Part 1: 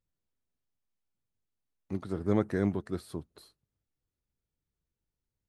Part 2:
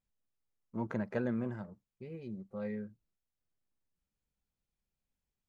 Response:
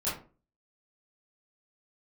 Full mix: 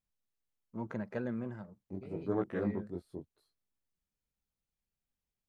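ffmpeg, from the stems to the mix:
-filter_complex "[0:a]afwtdn=0.01,lowshelf=frequency=150:gain=-9,flanger=delay=16:depth=7:speed=0.83,volume=-0.5dB[link_01];[1:a]volume=-3dB[link_02];[link_01][link_02]amix=inputs=2:normalize=0"

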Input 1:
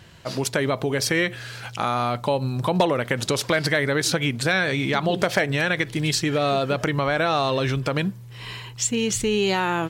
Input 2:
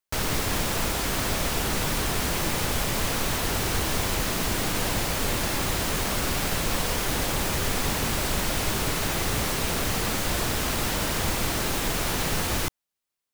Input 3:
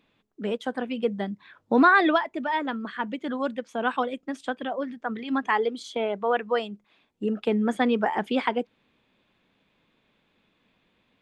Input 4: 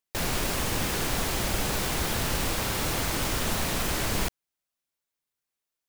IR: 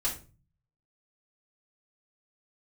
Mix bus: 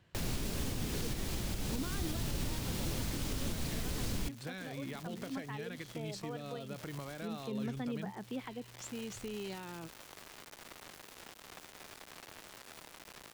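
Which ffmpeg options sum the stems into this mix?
-filter_complex "[0:a]volume=-18dB[link_01];[1:a]highpass=360,highshelf=frequency=8800:gain=-8,acrusher=bits=3:mix=0:aa=0.000001,adelay=1500,volume=-15.5dB[link_02];[2:a]volume=-13dB,asplit=2[link_03][link_04];[3:a]volume=-2dB[link_05];[link_04]apad=whole_len=654405[link_06];[link_02][link_06]sidechaincompress=threshold=-39dB:ratio=8:attack=7:release=339[link_07];[link_01][link_07][link_03][link_05]amix=inputs=4:normalize=0,highshelf=frequency=3600:gain=-7.5,acrossover=split=350|3000[link_08][link_09][link_10];[link_09]acompressor=threshold=-46dB:ratio=5[link_11];[link_08][link_11][link_10]amix=inputs=3:normalize=0,alimiter=level_in=2dB:limit=-24dB:level=0:latency=1:release=248,volume=-2dB"

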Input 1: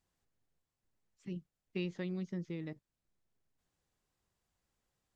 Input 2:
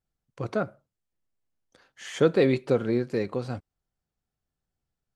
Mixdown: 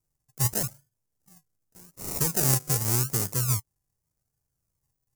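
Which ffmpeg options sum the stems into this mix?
ffmpeg -i stem1.wav -i stem2.wav -filter_complex "[0:a]volume=-17dB[link_01];[1:a]alimiter=limit=-16.5dB:level=0:latency=1:release=102,volume=0.5dB[link_02];[link_01][link_02]amix=inputs=2:normalize=0,equalizer=frequency=125:width_type=o:width=1:gain=11,equalizer=frequency=250:width_type=o:width=1:gain=-10,equalizer=frequency=500:width_type=o:width=1:gain=-7,equalizer=frequency=1000:width_type=o:width=1:gain=-11,equalizer=frequency=2000:width_type=o:width=1:gain=6,equalizer=frequency=4000:width_type=o:width=1:gain=-5,acrusher=samples=38:mix=1:aa=0.000001:lfo=1:lforange=22.8:lforate=0.85,aexciter=amount=9.3:drive=5:freq=5200" out.wav

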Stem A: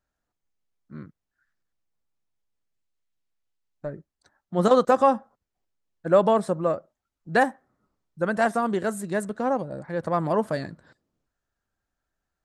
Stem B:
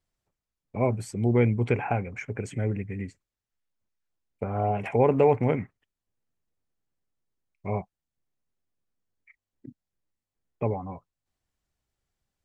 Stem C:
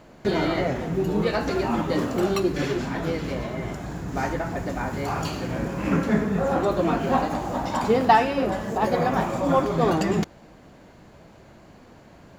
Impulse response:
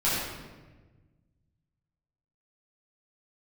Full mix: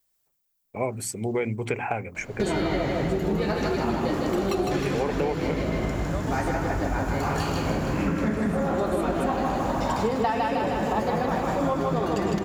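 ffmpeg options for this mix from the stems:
-filter_complex "[0:a]aemphasis=mode=production:type=riaa,volume=-14dB[link_01];[1:a]aemphasis=mode=production:type=bsi,bandreject=frequency=50:width_type=h:width=6,bandreject=frequency=100:width_type=h:width=6,bandreject=frequency=150:width_type=h:width=6,bandreject=frequency=200:width_type=h:width=6,bandreject=frequency=250:width_type=h:width=6,bandreject=frequency=300:width_type=h:width=6,bandreject=frequency=350:width_type=h:width=6,volume=2.5dB[link_02];[2:a]adelay=2150,volume=3dB,asplit=2[link_03][link_04];[link_04]volume=-3.5dB,aecho=0:1:156|312|468|624|780|936|1092|1248|1404:1|0.57|0.325|0.185|0.106|0.0602|0.0343|0.0195|0.0111[link_05];[link_01][link_02][link_03][link_05]amix=inputs=4:normalize=0,lowshelf=frequency=99:gain=8,bandreject=frequency=60:width_type=h:width=6,bandreject=frequency=120:width_type=h:width=6,bandreject=frequency=180:width_type=h:width=6,bandreject=frequency=240:width_type=h:width=6,acompressor=threshold=-22dB:ratio=6"

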